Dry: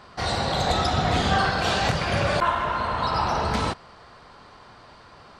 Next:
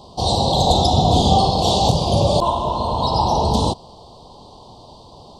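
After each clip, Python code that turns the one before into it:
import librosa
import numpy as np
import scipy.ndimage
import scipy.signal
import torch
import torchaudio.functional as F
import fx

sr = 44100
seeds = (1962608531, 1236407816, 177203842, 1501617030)

y = scipy.signal.sosfilt(scipy.signal.ellip(3, 1.0, 60, [920.0, 3400.0], 'bandstop', fs=sr, output='sos'), x)
y = y * librosa.db_to_amplitude(8.5)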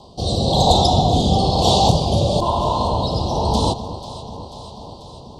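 y = fx.rotary(x, sr, hz=1.0)
y = fx.echo_alternate(y, sr, ms=245, hz=1000.0, feedback_pct=80, wet_db=-12.0)
y = y * librosa.db_to_amplitude(2.0)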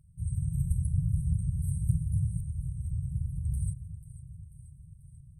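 y = fx.brickwall_bandstop(x, sr, low_hz=170.0, high_hz=8100.0)
y = y * librosa.db_to_amplitude(-8.0)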